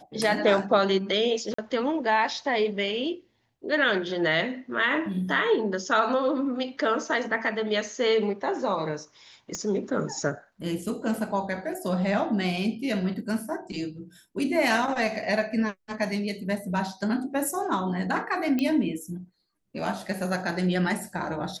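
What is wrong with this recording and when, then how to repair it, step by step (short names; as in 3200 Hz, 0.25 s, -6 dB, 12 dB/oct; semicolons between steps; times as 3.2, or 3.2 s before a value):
1.54–1.58 gap 44 ms
9.55 pop -18 dBFS
18.59 pop -15 dBFS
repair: de-click; interpolate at 1.54, 44 ms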